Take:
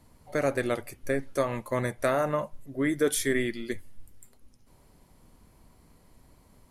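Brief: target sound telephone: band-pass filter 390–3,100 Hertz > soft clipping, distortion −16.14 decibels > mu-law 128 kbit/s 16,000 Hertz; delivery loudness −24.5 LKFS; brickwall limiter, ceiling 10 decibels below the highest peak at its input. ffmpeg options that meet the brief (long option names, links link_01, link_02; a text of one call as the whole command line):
ffmpeg -i in.wav -af "alimiter=limit=-23dB:level=0:latency=1,highpass=390,lowpass=3100,asoftclip=threshold=-28.5dB,volume=14.5dB" -ar 16000 -c:a pcm_mulaw out.wav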